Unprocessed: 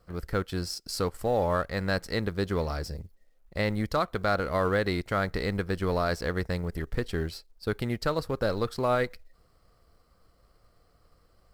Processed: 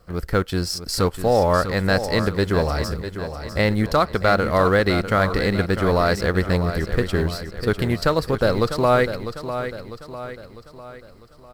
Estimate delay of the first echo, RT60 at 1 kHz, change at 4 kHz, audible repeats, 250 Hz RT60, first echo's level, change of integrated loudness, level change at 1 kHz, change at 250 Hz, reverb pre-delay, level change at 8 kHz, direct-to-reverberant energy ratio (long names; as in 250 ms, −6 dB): 650 ms, no reverb audible, +9.0 dB, 4, no reverb audible, −10.0 dB, +8.5 dB, +9.0 dB, +9.0 dB, no reverb audible, +9.0 dB, no reverb audible